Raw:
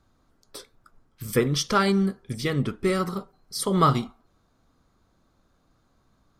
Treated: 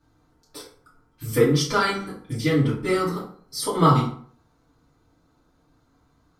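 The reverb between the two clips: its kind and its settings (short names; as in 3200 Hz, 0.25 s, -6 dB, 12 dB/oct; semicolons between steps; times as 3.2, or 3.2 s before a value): FDN reverb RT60 0.51 s, low-frequency decay 1×, high-frequency decay 0.65×, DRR -8 dB; gain -6 dB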